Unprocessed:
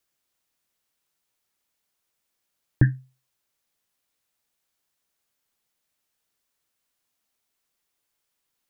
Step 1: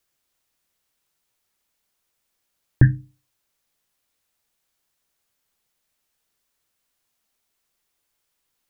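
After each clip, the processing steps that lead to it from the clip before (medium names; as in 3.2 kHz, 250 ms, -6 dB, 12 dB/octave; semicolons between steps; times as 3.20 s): bass shelf 91 Hz +6 dB; hum notches 50/100/150/200/250/300 Hz; trim +3 dB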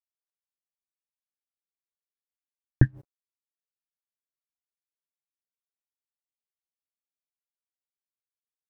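crossover distortion -42.5 dBFS; logarithmic tremolo 5 Hz, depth 29 dB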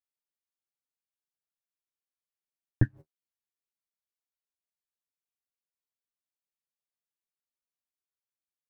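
flange 1.8 Hz, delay 9.1 ms, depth 4.1 ms, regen +23%; trim -1.5 dB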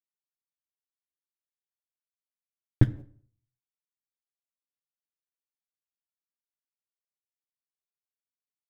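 median filter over 25 samples; on a send at -15 dB: reverberation RT60 0.50 s, pre-delay 21 ms; on the sum: trim +4 dB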